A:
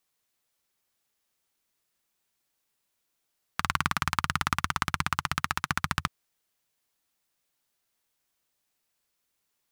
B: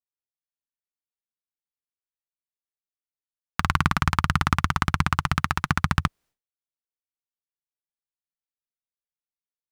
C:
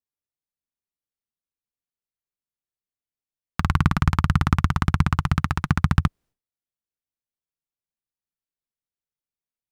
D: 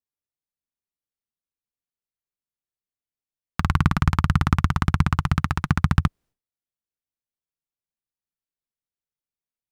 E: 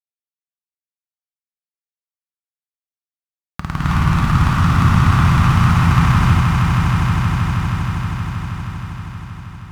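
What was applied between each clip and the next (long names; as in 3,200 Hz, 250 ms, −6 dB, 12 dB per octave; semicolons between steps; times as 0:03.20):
spectral tilt −2 dB per octave; downward expander −55 dBFS; level +5 dB
low-shelf EQ 480 Hz +10.5 dB; level −4.5 dB
no processing that can be heard
centre clipping without the shift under −36.5 dBFS; echo that builds up and dies away 158 ms, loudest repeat 5, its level −7.5 dB; reverb whose tail is shaped and stops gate 360 ms rising, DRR −8 dB; level −3.5 dB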